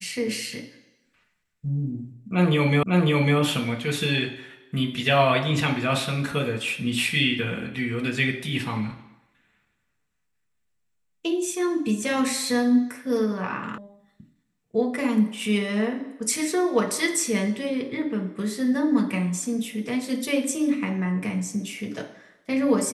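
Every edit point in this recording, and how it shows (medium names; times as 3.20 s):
2.83 s: repeat of the last 0.55 s
13.78 s: sound stops dead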